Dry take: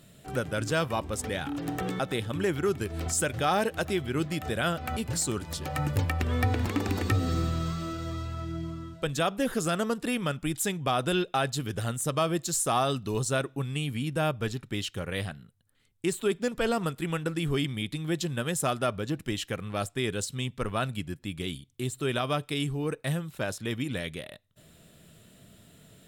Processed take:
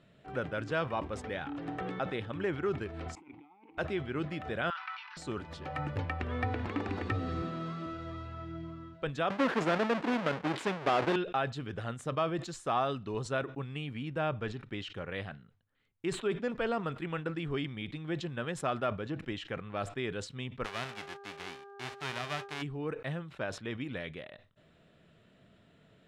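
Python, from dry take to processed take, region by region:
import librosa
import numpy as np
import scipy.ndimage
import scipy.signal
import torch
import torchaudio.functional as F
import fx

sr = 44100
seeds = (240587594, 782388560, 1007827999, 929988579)

y = fx.chain(x, sr, fx.halfwave_gain(db=-7.0),
    fx.over_compress(threshold_db=-34.0, ratio=-0.5),
    fx.vowel_filter(vowel='u'), at=(3.15, 3.78))
y = fx.chain(y, sr, fx.law_mismatch(coded='mu'),
    fx.cheby1_bandpass(low_hz=920.0, high_hz=5800.0, order=5),
    fx.sustainer(db_per_s=71.0), at=(4.7, 5.17))
y = fx.chain(y, sr, fx.highpass(hz=180.0, slope=24),
    fx.low_shelf(hz=240.0, db=9.0), at=(7.42, 7.86))
y = fx.chain(y, sr, fx.halfwave_hold(),
    fx.highpass(hz=190.0, slope=12), at=(9.3, 11.16))
y = fx.envelope_flatten(y, sr, power=0.1, at=(20.64, 22.61), fade=0.02)
y = fx.dmg_buzz(y, sr, base_hz=400.0, harmonics=4, level_db=-46.0, tilt_db=-6, odd_only=False, at=(20.64, 22.61), fade=0.02)
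y = scipy.signal.sosfilt(scipy.signal.butter(2, 2500.0, 'lowpass', fs=sr, output='sos'), y)
y = fx.low_shelf(y, sr, hz=260.0, db=-7.0)
y = fx.sustainer(y, sr, db_per_s=130.0)
y = F.gain(torch.from_numpy(y), -3.0).numpy()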